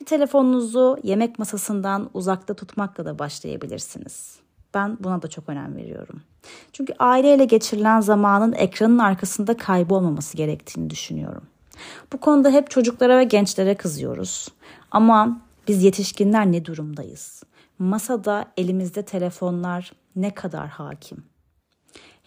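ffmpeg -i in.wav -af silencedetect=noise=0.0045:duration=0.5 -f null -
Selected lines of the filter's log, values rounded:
silence_start: 21.26
silence_end: 21.89 | silence_duration: 0.62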